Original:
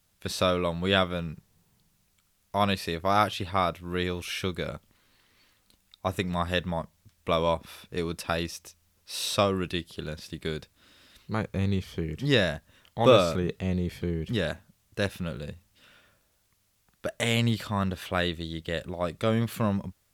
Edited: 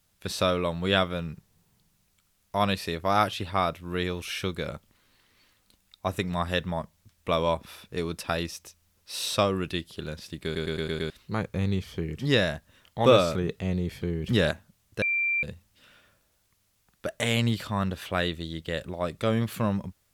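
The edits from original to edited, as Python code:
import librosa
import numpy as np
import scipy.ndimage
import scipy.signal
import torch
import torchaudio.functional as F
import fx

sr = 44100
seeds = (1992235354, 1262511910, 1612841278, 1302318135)

y = fx.edit(x, sr, fx.stutter_over(start_s=10.44, slice_s=0.11, count=6),
    fx.clip_gain(start_s=14.24, length_s=0.27, db=5.0),
    fx.bleep(start_s=15.02, length_s=0.41, hz=2360.0, db=-23.0), tone=tone)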